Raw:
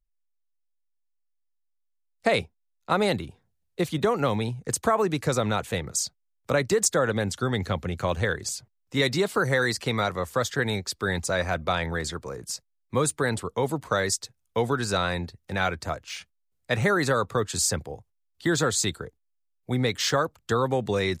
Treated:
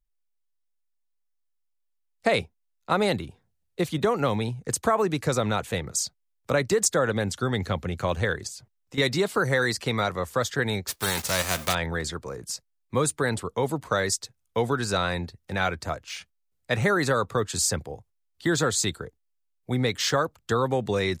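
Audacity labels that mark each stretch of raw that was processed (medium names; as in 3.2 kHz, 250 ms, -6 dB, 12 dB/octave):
8.470000	8.980000	compression 5:1, threshold -36 dBFS
10.870000	11.730000	formants flattened exponent 0.3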